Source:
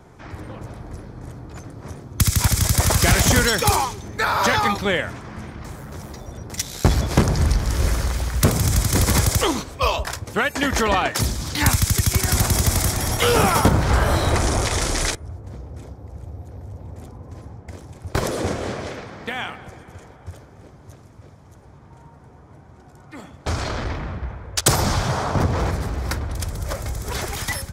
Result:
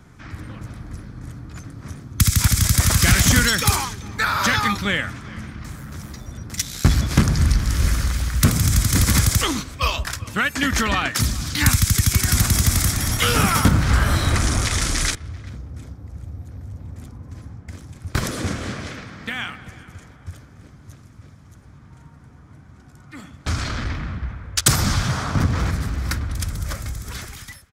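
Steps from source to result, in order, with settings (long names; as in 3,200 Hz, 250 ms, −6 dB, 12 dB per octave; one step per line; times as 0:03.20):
fade-out on the ending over 1.11 s
flat-topped bell 590 Hz −9.5 dB
far-end echo of a speakerphone 390 ms, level −21 dB
level +1.5 dB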